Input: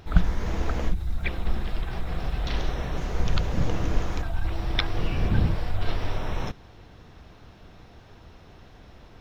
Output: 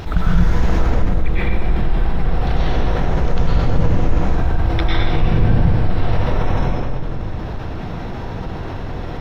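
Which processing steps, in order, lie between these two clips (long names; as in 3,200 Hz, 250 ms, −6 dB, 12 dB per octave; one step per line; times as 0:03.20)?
high-shelf EQ 2,700 Hz −2 dB, from 0:00.68 −11.5 dB
convolution reverb RT60 1.7 s, pre-delay 94 ms, DRR −8.5 dB
envelope flattener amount 50%
level −3 dB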